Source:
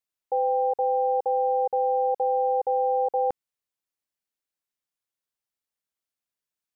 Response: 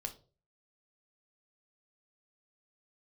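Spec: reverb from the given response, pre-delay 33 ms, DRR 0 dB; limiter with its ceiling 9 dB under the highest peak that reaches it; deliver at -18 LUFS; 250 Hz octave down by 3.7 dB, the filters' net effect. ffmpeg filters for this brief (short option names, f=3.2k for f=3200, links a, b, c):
-filter_complex "[0:a]equalizer=f=250:t=o:g=-6,alimiter=level_in=3dB:limit=-24dB:level=0:latency=1,volume=-3dB,asplit=2[a][b];[1:a]atrim=start_sample=2205,adelay=33[c];[b][c]afir=irnorm=-1:irlink=0,volume=1.5dB[d];[a][d]amix=inputs=2:normalize=0,volume=13dB"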